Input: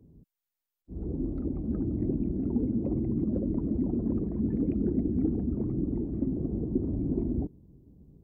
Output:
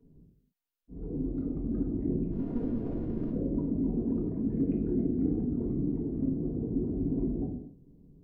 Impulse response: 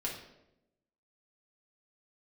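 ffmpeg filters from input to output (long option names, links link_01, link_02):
-filter_complex "[0:a]asplit=3[link_01][link_02][link_03];[link_01]afade=type=out:start_time=2.3:duration=0.02[link_04];[link_02]aeval=exprs='if(lt(val(0),0),0.447*val(0),val(0))':channel_layout=same,afade=type=in:start_time=2.3:duration=0.02,afade=type=out:start_time=3.31:duration=0.02[link_05];[link_03]afade=type=in:start_time=3.31:duration=0.02[link_06];[link_04][link_05][link_06]amix=inputs=3:normalize=0[link_07];[1:a]atrim=start_sample=2205,afade=type=out:start_time=0.34:duration=0.01,atrim=end_sample=15435[link_08];[link_07][link_08]afir=irnorm=-1:irlink=0,volume=-4.5dB"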